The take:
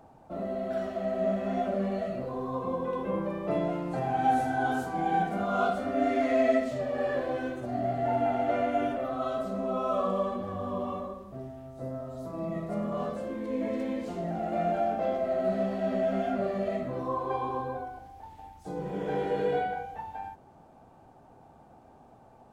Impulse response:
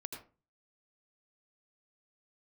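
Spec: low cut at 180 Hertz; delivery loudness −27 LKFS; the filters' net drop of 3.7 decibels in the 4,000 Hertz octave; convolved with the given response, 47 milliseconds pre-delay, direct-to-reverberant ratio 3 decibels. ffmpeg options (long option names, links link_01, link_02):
-filter_complex "[0:a]highpass=180,equalizer=frequency=4000:width_type=o:gain=-5,asplit=2[link_01][link_02];[1:a]atrim=start_sample=2205,adelay=47[link_03];[link_02][link_03]afir=irnorm=-1:irlink=0,volume=-1dB[link_04];[link_01][link_04]amix=inputs=2:normalize=0,volume=2dB"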